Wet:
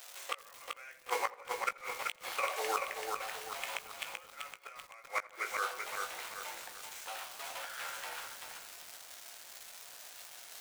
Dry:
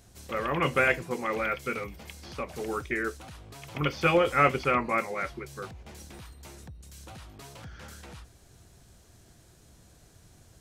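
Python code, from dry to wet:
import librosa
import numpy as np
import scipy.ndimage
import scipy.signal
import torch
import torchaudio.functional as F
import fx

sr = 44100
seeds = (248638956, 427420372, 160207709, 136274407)

p1 = scipy.signal.medfilt(x, 9)
p2 = fx.dmg_crackle(p1, sr, seeds[0], per_s=420.0, level_db=-47.0)
p3 = scipy.signal.sosfilt(scipy.signal.butter(4, 620.0, 'highpass', fs=sr, output='sos'), p2)
p4 = fx.high_shelf(p3, sr, hz=2300.0, db=8.5)
p5 = fx.room_shoebox(p4, sr, seeds[1], volume_m3=110.0, walls='mixed', distance_m=0.39)
p6 = fx.gate_flip(p5, sr, shuts_db=-22.0, range_db=-34)
p7 = fx.doubler(p6, sr, ms=18.0, db=-9.5)
p8 = p7 + fx.echo_filtered(p7, sr, ms=85, feedback_pct=80, hz=1800.0, wet_db=-19.5, dry=0)
p9 = fx.over_compress(p8, sr, threshold_db=-34.0, ratio=-0.5)
p10 = fx.echo_crushed(p9, sr, ms=385, feedback_pct=55, bits=9, wet_db=-3.5)
y = p10 * 10.0 ** (4.0 / 20.0)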